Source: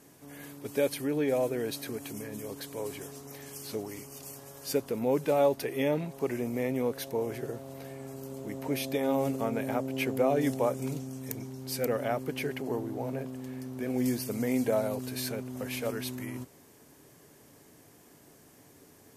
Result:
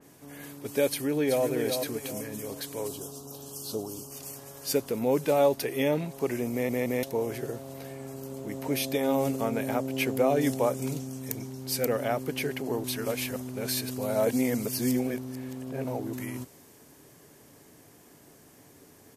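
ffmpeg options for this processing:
-filter_complex "[0:a]asplit=2[s0][s1];[s1]afade=t=in:st=0.89:d=0.01,afade=t=out:st=1.45:d=0.01,aecho=0:1:380|760|1140|1520:0.501187|0.175416|0.0613954|0.0214884[s2];[s0][s2]amix=inputs=2:normalize=0,asettb=1/sr,asplit=3[s3][s4][s5];[s3]atrim=end=2.884[s6];[s4]atrim=start=2.88:end=4.11,asetpts=PTS-STARTPTS,afade=t=in:d=0.004:c=qsin,afade=t=out:st=1.226:d=0.004:c=qsin,asuperstop=centerf=2000:order=4:qfactor=1.1[s7];[s5]atrim=start=4.106[s8];[s6][s7]acrossfade=d=0.004:c1=hsin:c2=qsin[s9];[s9][s8]acrossfade=d=0.004:c1=qsin:c2=hsin,asplit=6[s10][s11][s12][s13][s14][s15];[s10]atrim=end=6.692[s16];[s11]atrim=start=6.518:end=6.692[s17];[s12]atrim=start=6.518:end=6.692[s18];[s13]atrim=start=7.028:end=12.842[s19];[s14]atrim=start=12.838:end=16.132,asetpts=PTS-STARTPTS,areverse[s20];[s15]atrim=start=16.128[s21];[s16][s17]acrossfade=d=0.004:c1=hsin:c2=hsin[s22];[s22][s18]acrossfade=d=0.004:c1=hsin:c2=hsin[s23];[s23][s19]acrossfade=d=0.004:c1=hsin:c2=hsin[s24];[s24][s20]acrossfade=d=0.004:c1=hsin:c2=hsin[s25];[s25][s21]acrossfade=d=0.004:c1=hsin:c2=hsin,adynamicequalizer=threshold=0.00316:dfrequency=3000:dqfactor=0.7:tfrequency=3000:tqfactor=0.7:attack=5:release=100:ratio=0.375:range=2:mode=boostabove:tftype=highshelf,volume=1.26"

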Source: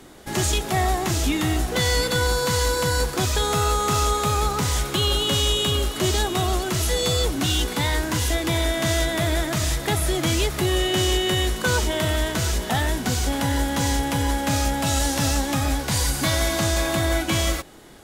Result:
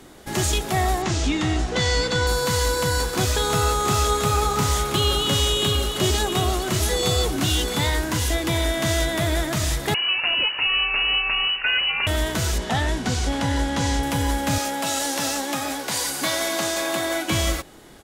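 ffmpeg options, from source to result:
-filter_complex "[0:a]asettb=1/sr,asplit=3[s0][s1][s2];[s0]atrim=end=1.024[s3];[s1]atrim=start=1.02:end=2.27,asetpts=PTS-STARTPTS,afade=t=in:d=0.004:c=qsin,afade=t=out:st=1.246:d=0.004:c=qsin,lowpass=f=7300:w=0.5412,lowpass=f=7300:w=1.3066[s4];[s2]atrim=start=2.266[s5];[s3][s4]acrossfade=d=0.004:c1=hsin:c2=qsin[s6];[s6][s5]acrossfade=d=0.004:c1=qsin:c2=hsin,asplit=3[s7][s8][s9];[s7]afade=t=out:st=2.98:d=0.02[s10];[s8]aecho=1:1:677:0.422,afade=t=in:st=2.98:d=0.02,afade=t=out:st=7.89:d=0.02[s11];[s9]afade=t=in:st=7.89:d=0.02[s12];[s10][s11][s12]amix=inputs=3:normalize=0,asettb=1/sr,asplit=3[s13][s14][s15];[s13]atrim=end=9.944[s16];[s14]atrim=start=9.94:end=12.07,asetpts=PTS-STARTPTS,afade=t=in:d=0.004:c=qsin,afade=t=out:st=2.126:d=0.004:c=qsin,lowpass=f=2600:t=q:w=0.5098,lowpass=f=2600:t=q:w=0.6013,lowpass=f=2600:t=q:w=0.9,lowpass=f=2600:t=q:w=2.563,afreqshift=-3000[s17];[s15]atrim=start=12.066[s18];[s16][s17]acrossfade=d=0.004:c1=hsin:c2=qsin[s19];[s19][s18]acrossfade=d=0.004:c1=qsin:c2=hsin,asettb=1/sr,asplit=3[s20][s21][s22];[s20]atrim=end=12.584[s23];[s21]atrim=start=12.58:end=14.03,asetpts=PTS-STARTPTS,afade=t=in:d=0.004:c=qsin,afade=t=out:st=1.446:d=0.004:c=qsin,lowpass=7400[s24];[s22]atrim=start=14.026[s25];[s23][s24]acrossfade=d=0.004:c1=hsin:c2=qsin[s26];[s26][s25]acrossfade=d=0.004:c1=qsin:c2=hsin,asettb=1/sr,asplit=3[s27][s28][s29];[s27]atrim=end=14.584[s30];[s28]atrim=start=14.58:end=17.3,asetpts=PTS-STARTPTS,afade=t=in:d=0.004:c=qsin,afade=t=out:st=2.716:d=0.004:c=qsin,highpass=300[s31];[s29]atrim=start=17.296[s32];[s30][s31]acrossfade=d=0.004:c1=hsin:c2=qsin[s33];[s33][s32]acrossfade=d=0.004:c1=qsin:c2=hsin"

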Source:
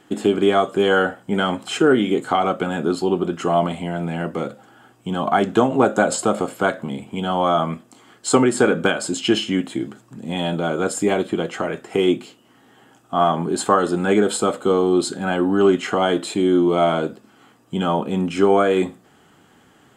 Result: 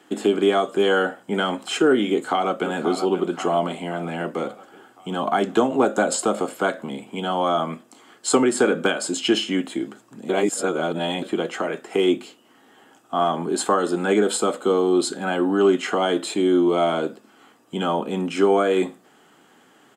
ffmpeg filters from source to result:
-filter_complex "[0:a]asplit=2[s0][s1];[s1]afade=t=in:st=2.09:d=0.01,afade=t=out:st=2.67:d=0.01,aecho=0:1:530|1060|1590|2120|2650|3180:0.298538|0.164196|0.0903078|0.0496693|0.0273181|0.015025[s2];[s0][s2]amix=inputs=2:normalize=0,asplit=3[s3][s4][s5];[s3]atrim=end=10.292[s6];[s4]atrim=start=10.288:end=11.222,asetpts=PTS-STARTPTS,areverse[s7];[s5]atrim=start=11.218[s8];[s6][s7]acrossfade=d=0.004:c1=hsin:c2=hsin[s9];[s9][s8]acrossfade=d=0.004:c1=hsin:c2=hsin,highpass=240,acrossover=split=420|3000[s10][s11][s12];[s11]acompressor=threshold=0.0562:ratio=1.5[s13];[s10][s13][s12]amix=inputs=3:normalize=0"

